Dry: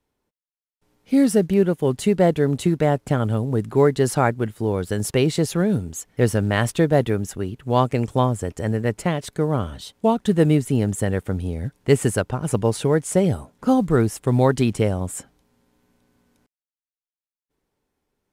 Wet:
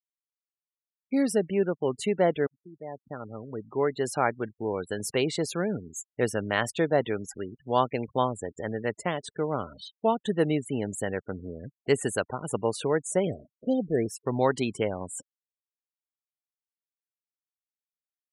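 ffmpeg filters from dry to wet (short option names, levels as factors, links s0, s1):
-filter_complex "[0:a]asettb=1/sr,asplit=3[s0][s1][s2];[s0]atrim=end=13.274[s3];[s1]atrim=start=13.27:end=14.06,asetpts=PTS-STARTPTS,afade=t=in:d=0.004:c=qsin,afade=t=out:st=0.786:d=0.004:c=qsin,asuperstop=centerf=1100:order=12:qfactor=1.1[s4];[s2]atrim=start=14.056[s5];[s3][s4]acrossfade=d=0.004:c1=hsin:c2=qsin[s6];[s6][s5]acrossfade=d=0.004:c1=qsin:c2=hsin,asplit=2[s7][s8];[s7]atrim=end=2.47,asetpts=PTS-STARTPTS,afade=t=out:st=2.466:d=0.004:c=hsin[s9];[s8]atrim=start=2.47,asetpts=PTS-STARTPTS,afade=t=in:d=2.02[s10];[s9][s10]concat=n=2:v=0:a=1,afftfilt=real='re*gte(hypot(re,im),0.0224)':imag='im*gte(hypot(re,im),0.0224)':win_size=1024:overlap=0.75,highpass=f=490:p=1,highshelf=f=10000:g=-6,volume=0.75"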